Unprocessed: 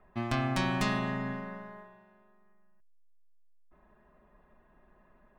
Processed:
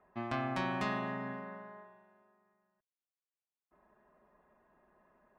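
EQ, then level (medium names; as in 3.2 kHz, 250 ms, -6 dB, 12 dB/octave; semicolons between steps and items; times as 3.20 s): high-pass 69 Hz 6 dB/octave; low-pass 1.4 kHz 6 dB/octave; bass shelf 260 Hz -10.5 dB; 0.0 dB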